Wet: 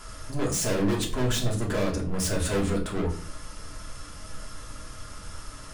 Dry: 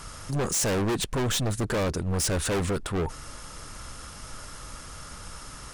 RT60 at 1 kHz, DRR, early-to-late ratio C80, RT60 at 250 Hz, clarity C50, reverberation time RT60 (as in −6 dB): 0.45 s, −2.0 dB, 14.5 dB, 0.80 s, 9.5 dB, 0.50 s